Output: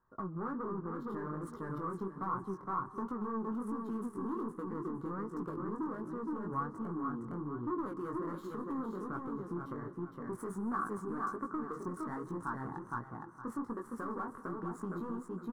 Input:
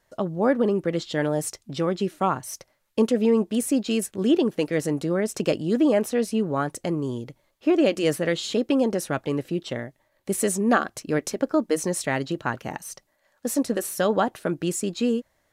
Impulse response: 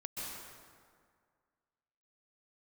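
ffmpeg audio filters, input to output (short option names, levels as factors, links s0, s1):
-filter_complex "[0:a]adynamicsmooth=sensitivity=6:basefreq=2100,asoftclip=type=tanh:threshold=0.1,asplit=2[s0][s1];[s1]aecho=0:1:463|926|1389:0.562|0.129|0.0297[s2];[s0][s2]amix=inputs=2:normalize=0,flanger=delay=16.5:depth=6.6:speed=1.3,alimiter=level_in=1.5:limit=0.0631:level=0:latency=1:release=141,volume=0.668,asoftclip=type=hard:threshold=0.0335,firequalizer=gain_entry='entry(390,0);entry(590,-14);entry(1100,12);entry(2500,-27);entry(9600,-10)':delay=0.05:min_phase=1,asplit=2[s3][s4];[1:a]atrim=start_sample=2205[s5];[s4][s5]afir=irnorm=-1:irlink=0,volume=0.168[s6];[s3][s6]amix=inputs=2:normalize=0,volume=0.631"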